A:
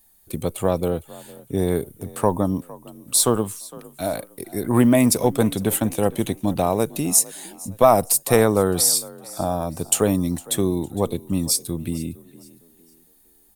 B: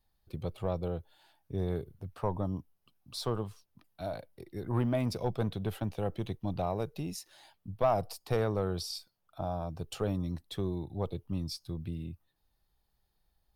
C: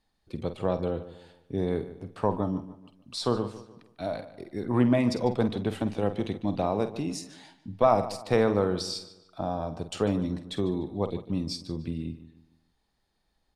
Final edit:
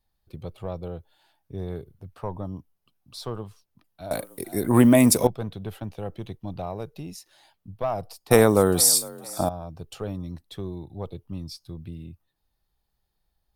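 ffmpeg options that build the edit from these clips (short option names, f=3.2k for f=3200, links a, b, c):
-filter_complex "[0:a]asplit=2[a][b];[1:a]asplit=3[c][d][e];[c]atrim=end=4.112[f];[a]atrim=start=4.108:end=5.272[g];[d]atrim=start=5.268:end=8.312[h];[b]atrim=start=8.308:end=9.492[i];[e]atrim=start=9.488[j];[f][g]acrossfade=d=0.004:c1=hsin:c2=hsin[k];[k][h]acrossfade=d=0.004:c1=hsin:c2=hsin[l];[l][i]acrossfade=d=0.004:c1=hsin:c2=hsin[m];[m][j]acrossfade=d=0.004:c1=hsin:c2=hsin"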